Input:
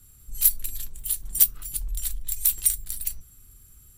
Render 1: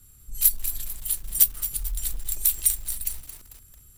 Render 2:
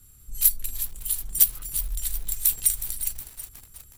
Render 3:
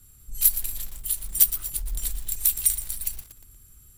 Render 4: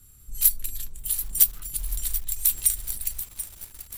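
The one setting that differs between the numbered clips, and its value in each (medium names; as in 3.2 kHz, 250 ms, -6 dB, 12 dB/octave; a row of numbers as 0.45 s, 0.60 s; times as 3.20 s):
bit-crushed delay, time: 222 ms, 366 ms, 118 ms, 735 ms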